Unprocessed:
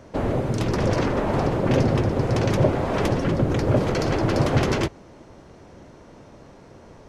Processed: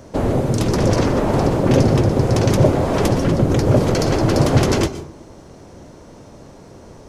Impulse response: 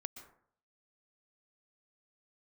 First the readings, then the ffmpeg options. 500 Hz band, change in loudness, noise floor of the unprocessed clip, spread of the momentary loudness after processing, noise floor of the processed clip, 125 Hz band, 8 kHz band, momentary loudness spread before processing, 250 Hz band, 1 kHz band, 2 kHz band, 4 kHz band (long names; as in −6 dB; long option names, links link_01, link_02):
+5.0 dB, +5.5 dB, −48 dBFS, 4 LU, −42 dBFS, +6.0 dB, +10.0 dB, 4 LU, +6.0 dB, +4.0 dB, +2.0 dB, +6.0 dB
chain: -filter_complex "[0:a]asplit=2[link_01][link_02];[link_02]equalizer=frequency=1800:width=0.81:gain=-10[link_03];[1:a]atrim=start_sample=2205,highshelf=frequency=3700:gain=10.5[link_04];[link_03][link_04]afir=irnorm=-1:irlink=0,volume=6dB[link_05];[link_01][link_05]amix=inputs=2:normalize=0,volume=-1.5dB"